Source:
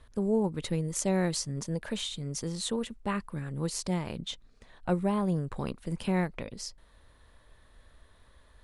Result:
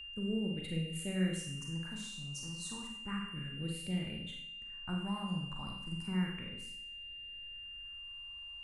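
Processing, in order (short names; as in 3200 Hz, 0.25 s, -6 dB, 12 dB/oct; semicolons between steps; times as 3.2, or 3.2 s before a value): phaser stages 4, 0.32 Hz, lowest notch 430–1000 Hz; Schroeder reverb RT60 0.67 s, combs from 33 ms, DRR 0.5 dB; whine 2800 Hz -36 dBFS; gain -9 dB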